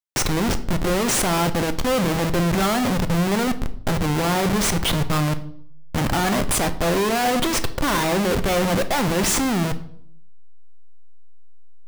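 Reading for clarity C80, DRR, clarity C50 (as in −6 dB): 18.0 dB, 9.0 dB, 14.5 dB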